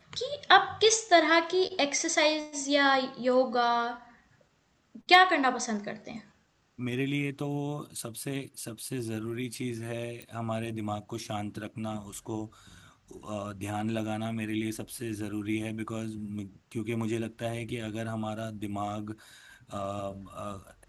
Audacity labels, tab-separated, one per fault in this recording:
10.220000	10.220000	pop -26 dBFS

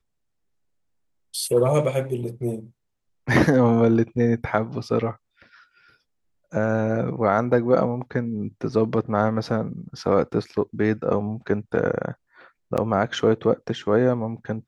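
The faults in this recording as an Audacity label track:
12.770000	12.780000	gap 7.6 ms

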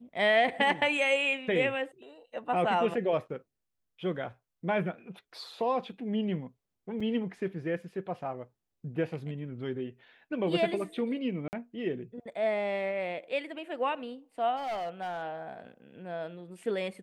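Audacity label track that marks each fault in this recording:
7.000000	7.000000	gap 4.9 ms
11.480000	11.530000	gap 49 ms
14.560000	15.230000	clipped -31 dBFS

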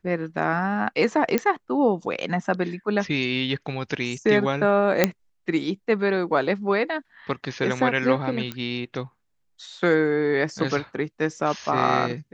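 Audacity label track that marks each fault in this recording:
1.380000	1.380000	pop -8 dBFS
5.040000	5.040000	pop -2 dBFS
8.520000	8.520000	pop -16 dBFS

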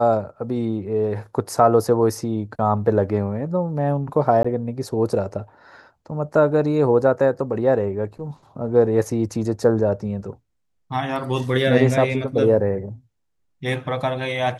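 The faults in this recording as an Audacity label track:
4.430000	4.450000	gap 15 ms

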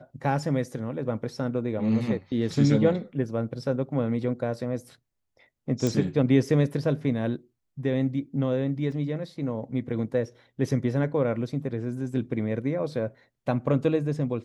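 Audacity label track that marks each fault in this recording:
5.870000	5.870000	pop
8.920000	8.920000	gap 2.1 ms

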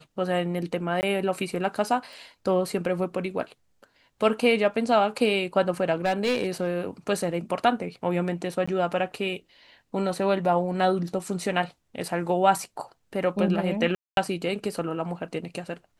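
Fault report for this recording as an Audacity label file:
1.010000	1.030000	gap 19 ms
2.130000	2.130000	pop
6.050000	6.690000	clipped -19 dBFS
8.660000	8.680000	gap 15 ms
13.950000	14.170000	gap 0.222 s

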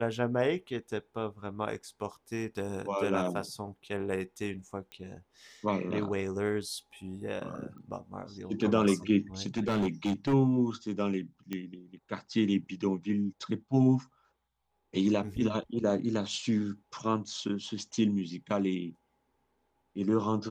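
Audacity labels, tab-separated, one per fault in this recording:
4.920000	4.920000	pop -29 dBFS
7.780000	7.780000	pop -42 dBFS
9.420000	10.340000	clipped -24.5 dBFS
11.530000	11.530000	pop -21 dBFS

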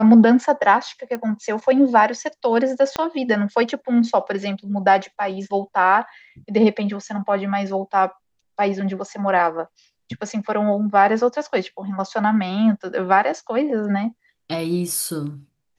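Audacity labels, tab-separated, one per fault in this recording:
1.150000	1.150000	pop -15 dBFS
2.960000	2.960000	pop -8 dBFS

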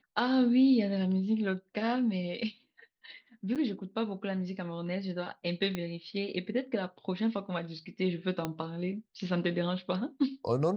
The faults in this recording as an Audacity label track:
3.550000	3.560000	gap 7.7 ms
5.750000	5.750000	pop -20 dBFS
8.450000	8.450000	pop -18 dBFS

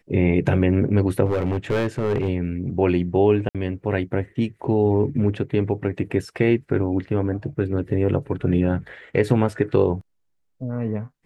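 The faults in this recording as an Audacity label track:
1.250000	2.290000	clipped -17 dBFS
3.490000	3.550000	gap 57 ms

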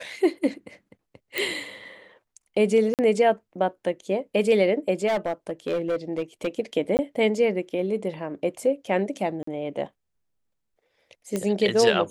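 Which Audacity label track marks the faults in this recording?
1.380000	1.380000	pop
2.940000	2.990000	gap 48 ms
5.070000	6.480000	clipped -21 dBFS
6.970000	6.990000	gap 19 ms
9.430000	9.470000	gap 44 ms
11.360000	11.360000	pop -14 dBFS

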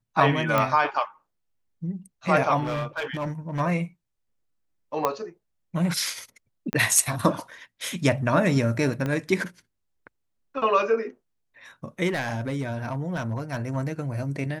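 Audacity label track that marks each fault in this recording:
0.580000	0.580000	pop -9 dBFS
2.630000	3.610000	clipped -24.5 dBFS
5.050000	5.050000	pop -9 dBFS
6.730000	6.730000	pop -12 dBFS
9.060000	9.060000	pop -16 dBFS
12.070000	13.770000	clipped -22 dBFS

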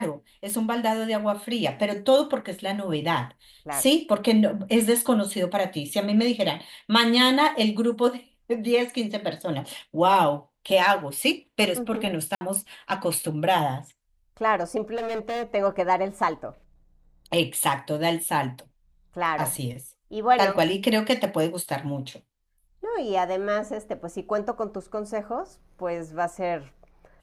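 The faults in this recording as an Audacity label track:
0.500000	0.500000	pop -18 dBFS
12.350000	12.410000	gap 60 ms
14.950000	15.430000	clipped -26 dBFS

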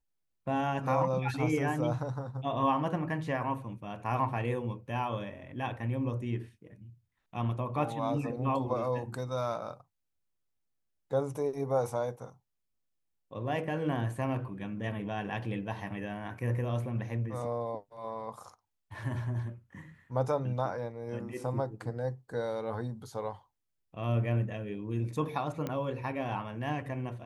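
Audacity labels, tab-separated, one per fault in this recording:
25.670000	25.670000	pop -21 dBFS

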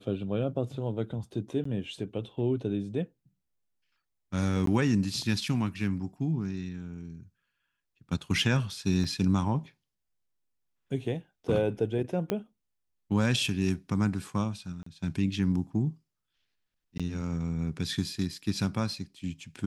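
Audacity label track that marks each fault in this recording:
1.640000	1.650000	gap 14 ms
4.660000	4.670000	gap 13 ms
9.040000	9.040000	gap 4.1 ms
12.300000	12.300000	pop -15 dBFS
14.830000	14.860000	gap 34 ms
16.980000	17.000000	gap 16 ms

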